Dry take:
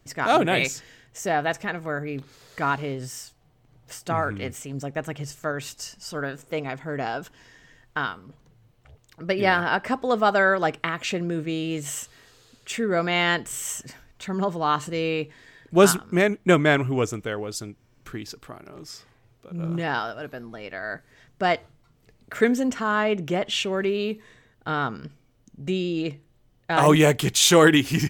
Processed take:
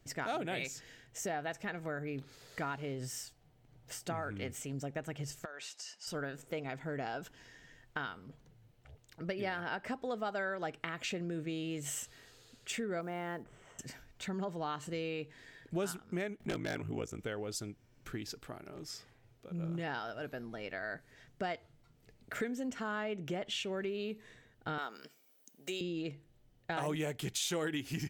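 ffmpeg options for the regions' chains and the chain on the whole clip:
ffmpeg -i in.wav -filter_complex "[0:a]asettb=1/sr,asplit=3[link_01][link_02][link_03];[link_01]atrim=end=5.454[link_04];[link_02]atrim=start=5.45:end=6.07,asetpts=PTS-STARTPTS,afade=type=in:duration=0.004:curve=qsin,afade=type=out:start_time=0.616:duration=0.004:curve=qsin,highpass=660,lowpass=7400,acompressor=threshold=-36dB:ratio=12:attack=3.2:release=140:knee=1:detection=peak[link_05];[link_03]atrim=start=6.066[link_06];[link_04][link_05]acrossfade=duration=0.004:curve1=hsin:curve2=qsin[link_07];[link_07][link_06]acrossfade=duration=0.004:curve1=qsin:curve2=hsin,asettb=1/sr,asplit=3[link_08][link_09][link_10];[link_08]atrim=end=13.014[link_11];[link_09]atrim=start=13.01:end=13.79,asetpts=PTS-STARTPTS,afade=type=in:duration=0.004:curve=qsin,afade=type=out:start_time=0.776:duration=0.004:curve=qsin,lowpass=1100,lowshelf=frequency=150:gain=-4,acrusher=bits=8:mode=log:mix=0:aa=0.000001[link_12];[link_10]atrim=start=13.786[link_13];[link_11][link_12]acrossfade=duration=0.004:curve1=hsin:curve2=qsin[link_14];[link_14][link_13]acrossfade=duration=0.004:curve1=qsin:curve2=hsin,asettb=1/sr,asplit=3[link_15][link_16][link_17];[link_15]atrim=end=16.404[link_18];[link_16]atrim=start=16.4:end=17.19,asetpts=PTS-STARTPTS,afade=type=in:duration=0.004:curve=qsin,afade=type=out:start_time=0.786:duration=0.004:curve=qsin,acompressor=mode=upward:threshold=-29dB:ratio=2.5:attack=3.2:release=140:knee=2.83:detection=peak,aeval=exprs='val(0)*sin(2*PI*27*n/s)':channel_layout=same,aeval=exprs='0.2*(abs(mod(val(0)/0.2+3,4)-2)-1)':channel_layout=same[link_19];[link_17]atrim=start=17.186[link_20];[link_18][link_19]acrossfade=duration=0.004:curve1=hsin:curve2=qsin[link_21];[link_21][link_20]acrossfade=duration=0.004:curve1=qsin:curve2=hsin,asettb=1/sr,asplit=3[link_22][link_23][link_24];[link_22]atrim=end=24.784[link_25];[link_23]atrim=start=24.78:end=25.81,asetpts=PTS-STARTPTS,afade=type=in:duration=0.004:curve=qsin,afade=type=out:start_time=1.026:duration=0.004:curve=qsin,highpass=340,aemphasis=mode=production:type=bsi[link_26];[link_24]atrim=start=25.806[link_27];[link_25][link_26]acrossfade=duration=0.004:curve1=hsin:curve2=qsin[link_28];[link_28][link_27]acrossfade=duration=0.004:curve1=qsin:curve2=hsin,equalizer=frequency=1100:width=5.1:gain=-6,acompressor=threshold=-31dB:ratio=4,volume=-5dB" out.wav

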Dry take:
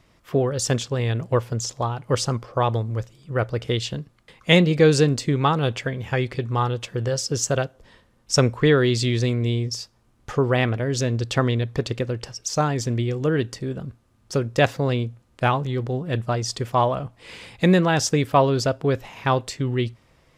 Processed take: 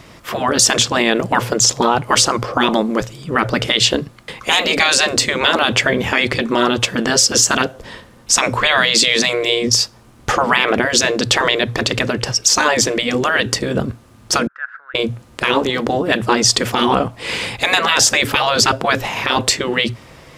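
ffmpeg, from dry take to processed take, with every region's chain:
ffmpeg -i in.wav -filter_complex "[0:a]asettb=1/sr,asplit=3[link_01][link_02][link_03];[link_01]atrim=end=14.474[link_04];[link_02]atrim=start=14.47:end=14.95,asetpts=PTS-STARTPTS,afade=type=in:duration=0.004:curve=qsin,afade=type=out:start_time=0.476:duration=0.004:curve=qsin,acompressor=threshold=-29dB:ratio=4:attack=3.2:release=140:knee=1:detection=peak,asuperpass=centerf=1500:order=4:qfactor=4.7[link_05];[link_03]atrim=start=14.946[link_06];[link_04][link_05]acrossfade=duration=0.004:curve1=hsin:curve2=qsin[link_07];[link_07][link_06]acrossfade=duration=0.004:curve1=qsin:curve2=hsin,afftfilt=real='re*lt(hypot(re,im),0.224)':imag='im*lt(hypot(re,im),0.224)':win_size=1024:overlap=0.75,lowshelf=frequency=62:gain=-10.5,alimiter=level_in=19.5dB:limit=-1dB:release=50:level=0:latency=1,volume=-1dB" out.wav

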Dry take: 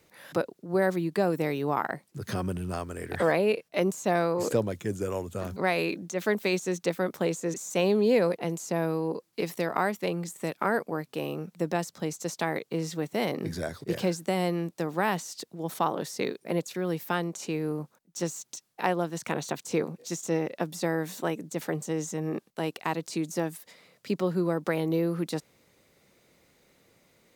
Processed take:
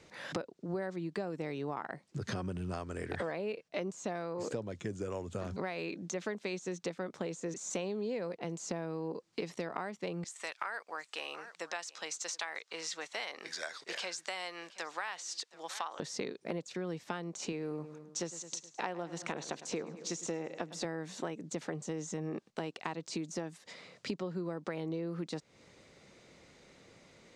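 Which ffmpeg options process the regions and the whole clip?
ffmpeg -i in.wav -filter_complex "[0:a]asettb=1/sr,asplit=3[link_01][link_02][link_03];[link_01]atrim=end=10.244[link_04];[link_02]atrim=start=10.24:end=16,asetpts=PTS-STARTPTS,afade=type=in:duration=0.004:curve=qsin,afade=type=out:start_time=5.756:duration=0.004:curve=qsin,highpass=1200,aecho=1:1:725:0.0794,atrim=end_sample=254016[link_05];[link_03]atrim=start=15.996[link_06];[link_04][link_05]acrossfade=duration=0.004:curve1=hsin:curve2=qsin[link_07];[link_07][link_06]acrossfade=duration=0.004:curve1=qsin:curve2=hsin,asettb=1/sr,asplit=3[link_08][link_09][link_10];[link_08]atrim=end=17.524[link_11];[link_09]atrim=start=17.52:end=20.85,asetpts=PTS-STARTPTS,afade=type=in:duration=0.004:curve=qsin,afade=type=out:start_time=3.326:duration=0.004:curve=qsin,highpass=frequency=220:poles=1,aecho=1:1:105|210|315|420:0.141|0.072|0.0367|0.0187,atrim=end_sample=146853[link_12];[link_10]atrim=start=20.846[link_13];[link_11][link_12]acrossfade=duration=0.004:curve1=hsin:curve2=qsin[link_14];[link_14][link_13]acrossfade=duration=0.004:curve1=qsin:curve2=hsin,lowpass=frequency=7500:width=0.5412,lowpass=frequency=7500:width=1.3066,acompressor=threshold=-40dB:ratio=6,volume=4.5dB" out.wav

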